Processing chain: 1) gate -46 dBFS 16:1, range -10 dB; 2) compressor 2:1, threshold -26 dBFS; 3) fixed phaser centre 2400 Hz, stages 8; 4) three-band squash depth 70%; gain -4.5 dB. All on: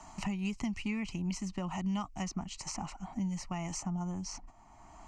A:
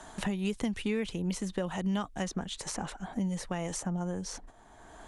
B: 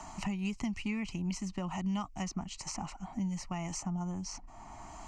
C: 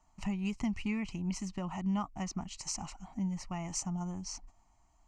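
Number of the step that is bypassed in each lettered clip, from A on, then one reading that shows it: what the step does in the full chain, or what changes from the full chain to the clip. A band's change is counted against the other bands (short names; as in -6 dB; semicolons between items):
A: 3, crest factor change +2.5 dB; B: 1, momentary loudness spread change +1 LU; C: 4, crest factor change +2.0 dB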